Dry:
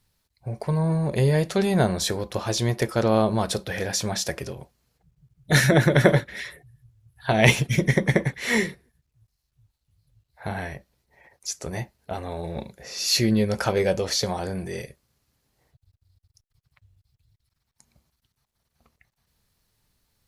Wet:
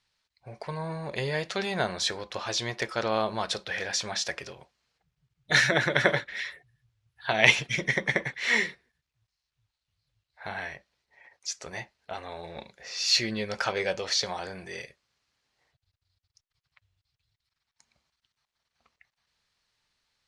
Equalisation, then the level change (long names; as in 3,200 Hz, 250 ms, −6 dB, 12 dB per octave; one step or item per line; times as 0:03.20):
high-frequency loss of the air 120 metres
tilt shelving filter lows −5.5 dB
low-shelf EQ 360 Hz −9.5 dB
−1.0 dB